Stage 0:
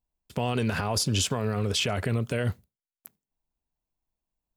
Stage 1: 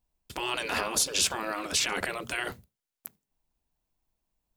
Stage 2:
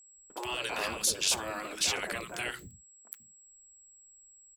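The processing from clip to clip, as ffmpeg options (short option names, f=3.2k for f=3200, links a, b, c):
-af "afftfilt=real='re*lt(hypot(re,im),0.1)':imag='im*lt(hypot(re,im),0.1)':win_size=1024:overlap=0.75,volume=5.5dB"
-filter_complex "[0:a]acrossover=split=270|1300[a][b][c];[c]adelay=70[d];[a]adelay=150[e];[e][b][d]amix=inputs=3:normalize=0,aeval=exprs='val(0)+0.00224*sin(2*PI*7700*n/s)':c=same,volume=-2dB"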